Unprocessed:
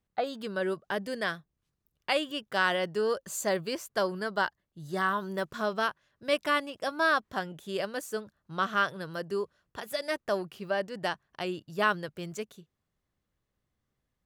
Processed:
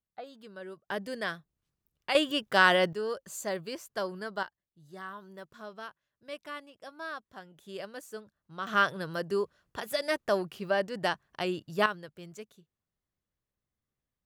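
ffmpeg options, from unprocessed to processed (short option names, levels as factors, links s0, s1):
-af "asetnsamples=n=441:p=0,asendcmd='0.89 volume volume -2.5dB;2.15 volume volume 5dB;2.93 volume volume -5dB;4.43 volume volume -14dB;7.58 volume volume -8dB;8.67 volume volume 2dB;11.86 volume volume -8dB',volume=0.224"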